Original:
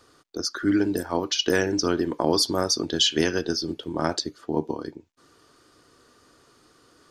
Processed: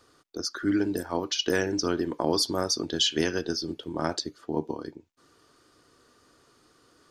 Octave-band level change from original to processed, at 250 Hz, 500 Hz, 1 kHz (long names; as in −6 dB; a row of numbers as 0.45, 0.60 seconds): −3.5, −3.5, −3.5 decibels